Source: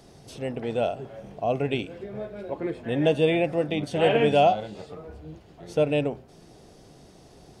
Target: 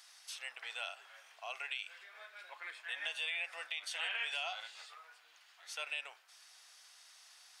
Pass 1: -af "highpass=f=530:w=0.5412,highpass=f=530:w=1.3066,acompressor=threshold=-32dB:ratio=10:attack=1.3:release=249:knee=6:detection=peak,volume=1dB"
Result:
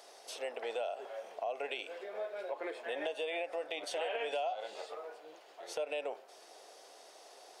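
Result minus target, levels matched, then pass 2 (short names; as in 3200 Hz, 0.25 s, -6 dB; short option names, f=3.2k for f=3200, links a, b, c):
500 Hz band +17.5 dB
-af "highpass=f=1.3k:w=0.5412,highpass=f=1.3k:w=1.3066,acompressor=threshold=-32dB:ratio=10:attack=1.3:release=249:knee=6:detection=peak,volume=1dB"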